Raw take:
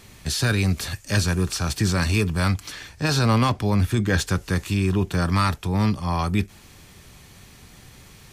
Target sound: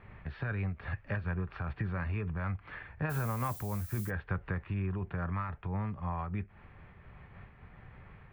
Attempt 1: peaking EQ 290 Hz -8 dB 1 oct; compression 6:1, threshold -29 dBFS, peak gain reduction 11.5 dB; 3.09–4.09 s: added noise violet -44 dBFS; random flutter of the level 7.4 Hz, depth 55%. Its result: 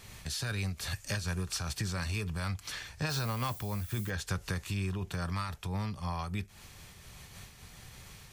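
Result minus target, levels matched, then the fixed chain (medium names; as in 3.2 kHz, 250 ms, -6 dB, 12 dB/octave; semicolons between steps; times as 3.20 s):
8 kHz band +13.5 dB
inverse Chebyshev low-pass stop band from 6.5 kHz, stop band 60 dB; peaking EQ 290 Hz -8 dB 1 oct; compression 6:1, threshold -29 dBFS, peak gain reduction 11.5 dB; 3.09–4.09 s: added noise violet -44 dBFS; random flutter of the level 7.4 Hz, depth 55%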